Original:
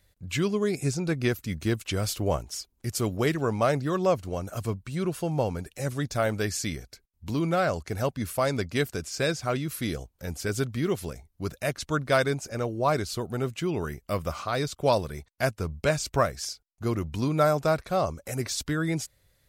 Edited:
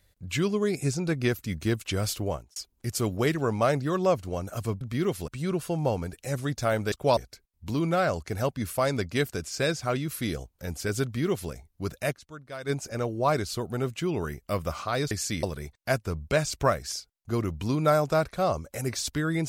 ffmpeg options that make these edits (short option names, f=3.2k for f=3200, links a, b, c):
-filter_complex "[0:a]asplit=10[a][b][c][d][e][f][g][h][i][j];[a]atrim=end=2.56,asetpts=PTS-STARTPTS,afade=t=out:st=2.14:d=0.42[k];[b]atrim=start=2.56:end=4.812,asetpts=PTS-STARTPTS,afade=t=in:d=0.004:c=hsin[l];[c]atrim=start=10.638:end=11.112[m];[d]atrim=start=4.808:end=6.452[n];[e]atrim=start=14.708:end=14.962[o];[f]atrim=start=6.768:end=12,asetpts=PTS-STARTPTS,afade=t=out:st=4.942:d=0.29:c=exp:silence=0.149624[p];[g]atrim=start=12:end=12.01,asetpts=PTS-STARTPTS,volume=-16.5dB[q];[h]atrim=start=12.01:end=14.712,asetpts=PTS-STARTPTS,afade=t=in:d=0.29:c=exp:silence=0.149624[r];[i]atrim=start=6.448:end=6.772[s];[j]atrim=start=14.958[t];[k][l]concat=n=2:v=0:a=1[u];[u][m]acrossfade=d=0.004:c1=hsin:c2=hsin[v];[v][n]acrossfade=d=0.004:c1=hsin:c2=hsin[w];[w][o]acrossfade=d=0.004:c1=hsin:c2=hsin[x];[p][q][r]concat=n=3:v=0:a=1[y];[x][y]acrossfade=d=0.004:c1=hsin:c2=hsin[z];[z][s]acrossfade=d=0.004:c1=hsin:c2=hsin[aa];[aa][t]acrossfade=d=0.004:c1=hsin:c2=hsin"